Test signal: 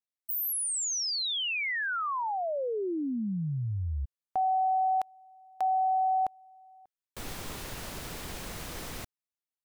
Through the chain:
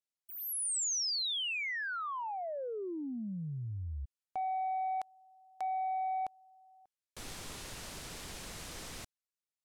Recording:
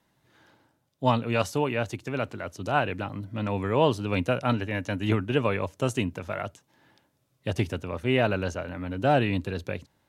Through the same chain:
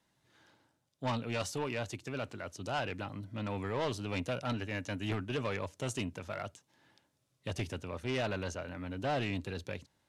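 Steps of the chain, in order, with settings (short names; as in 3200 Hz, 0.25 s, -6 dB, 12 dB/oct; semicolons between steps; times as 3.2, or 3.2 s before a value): soft clip -21.5 dBFS; LPF 9900 Hz 12 dB/oct; high shelf 3100 Hz +7 dB; gain -7 dB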